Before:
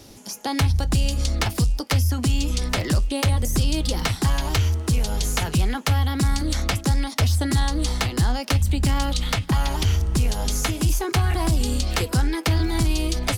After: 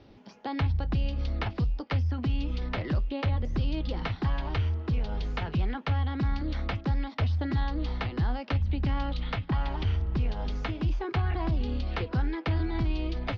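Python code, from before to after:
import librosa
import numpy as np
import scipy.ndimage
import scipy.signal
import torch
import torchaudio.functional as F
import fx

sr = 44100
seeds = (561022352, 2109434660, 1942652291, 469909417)

y = scipy.signal.sosfilt(scipy.signal.bessel(8, 2500.0, 'lowpass', norm='mag', fs=sr, output='sos'), x)
y = F.gain(torch.from_numpy(y), -7.0).numpy()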